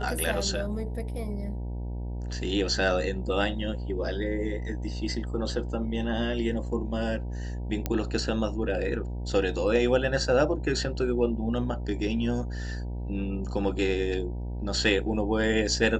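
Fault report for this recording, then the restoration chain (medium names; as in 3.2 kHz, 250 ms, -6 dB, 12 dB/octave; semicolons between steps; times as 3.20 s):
buzz 60 Hz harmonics 16 -33 dBFS
7.86 s: pop -13 dBFS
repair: de-click; de-hum 60 Hz, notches 16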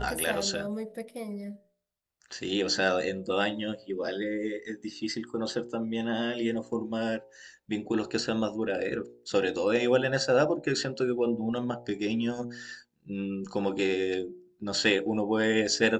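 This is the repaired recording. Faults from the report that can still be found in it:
nothing left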